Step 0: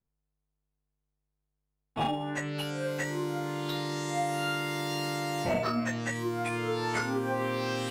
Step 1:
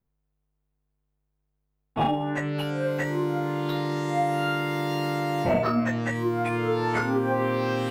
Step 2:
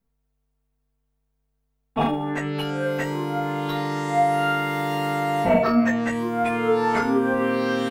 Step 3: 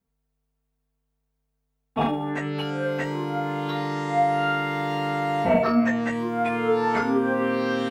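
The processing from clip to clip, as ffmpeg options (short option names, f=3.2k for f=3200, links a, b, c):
-af "equalizer=f=7.4k:t=o:w=2.3:g=-12.5,volume=6.5dB"
-af "aecho=1:1:4.4:0.67,volume=2dB"
-filter_complex "[0:a]highpass=44,acrossover=split=6500[a][b];[b]acompressor=threshold=-57dB:ratio=4:attack=1:release=60[c];[a][c]amix=inputs=2:normalize=0,volume=-1.5dB"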